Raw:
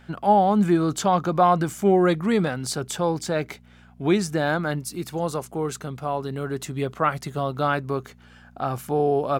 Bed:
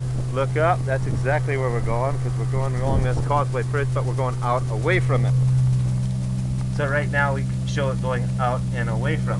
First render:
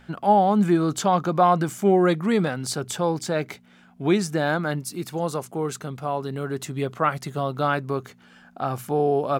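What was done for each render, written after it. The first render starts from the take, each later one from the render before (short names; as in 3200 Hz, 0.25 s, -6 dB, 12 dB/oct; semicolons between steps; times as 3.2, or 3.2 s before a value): de-hum 60 Hz, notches 2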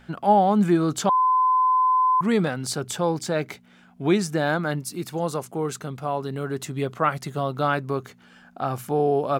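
1.09–2.21 bleep 1020 Hz -16 dBFS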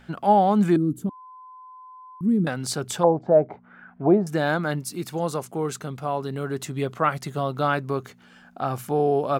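0.76–2.47 EQ curve 150 Hz 0 dB, 290 Hz +4 dB, 680 Hz -25 dB, 2700 Hz -28 dB, 5400 Hz -28 dB, 11000 Hz -6 dB; 3.03–4.27 envelope low-pass 670–1800 Hz down, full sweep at -23.5 dBFS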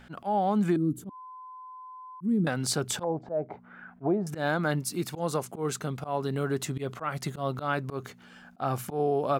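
compressor 16:1, threshold -21 dBFS, peak gain reduction 10.5 dB; auto swell 0.114 s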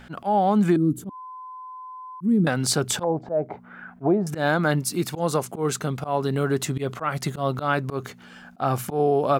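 gain +6 dB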